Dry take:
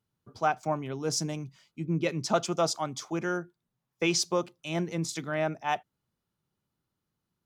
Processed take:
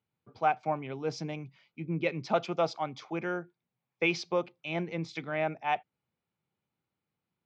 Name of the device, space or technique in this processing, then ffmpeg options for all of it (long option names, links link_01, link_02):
guitar cabinet: -af "highpass=84,equalizer=frequency=500:width_type=q:width=4:gain=4,equalizer=frequency=790:width_type=q:width=4:gain=5,equalizer=frequency=2300:width_type=q:width=4:gain=9,lowpass=frequency=4300:width=0.5412,lowpass=frequency=4300:width=1.3066,volume=-4dB"